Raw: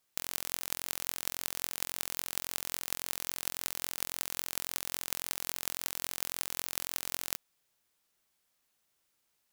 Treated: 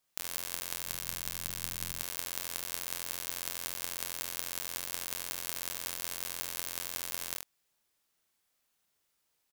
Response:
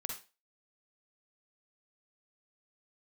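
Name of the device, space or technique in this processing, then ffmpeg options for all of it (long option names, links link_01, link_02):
slapback doubling: -filter_complex "[0:a]asettb=1/sr,asplit=3[link_01][link_02][link_03];[link_01]atrim=end=0.674[link_04];[link_02]atrim=start=0.67:end=1.95,asetpts=PTS-STARTPTS,afade=type=in:duration=0.004:curve=qsin,afade=type=out:start_time=1.276:duration=0.004:curve=qsin,asubboost=boost=10:cutoff=220[link_05];[link_03]atrim=start=1.946[link_06];[link_04][link_05]acrossfade=duration=0.004:curve1=hsin:curve2=qsin[link_07];[link_07][link_06]acrossfade=duration=0.004:curve1=qsin:curve2=hsin,asplit=3[link_08][link_09][link_10];[link_09]adelay=34,volume=-6dB[link_11];[link_10]adelay=78,volume=-6dB[link_12];[link_08][link_11][link_12]amix=inputs=3:normalize=0,volume=-2.5dB"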